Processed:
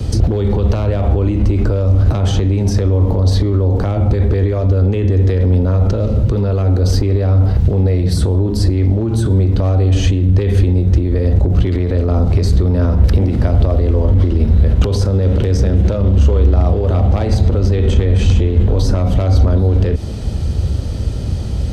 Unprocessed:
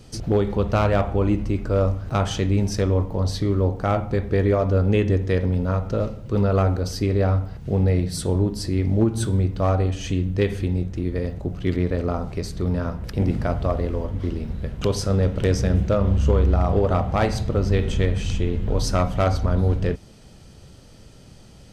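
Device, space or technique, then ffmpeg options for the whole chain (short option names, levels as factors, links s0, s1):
mastering chain: -filter_complex "[0:a]highpass=45,equalizer=f=3900:t=o:w=0.55:g=4,acrossover=split=210|610|1900[s0][s1][s2][s3];[s0]acompressor=threshold=0.0178:ratio=4[s4];[s1]acompressor=threshold=0.0447:ratio=4[s5];[s2]acompressor=threshold=0.0126:ratio=4[s6];[s3]acompressor=threshold=0.0158:ratio=4[s7];[s4][s5][s6][s7]amix=inputs=4:normalize=0,acompressor=threshold=0.0501:ratio=2.5,asoftclip=type=tanh:threshold=0.133,tiltshelf=f=670:g=6,asoftclip=type=hard:threshold=0.133,alimiter=level_in=25.1:limit=0.891:release=50:level=0:latency=1,lowshelf=f=110:t=q:w=1.5:g=7.5,volume=0.355"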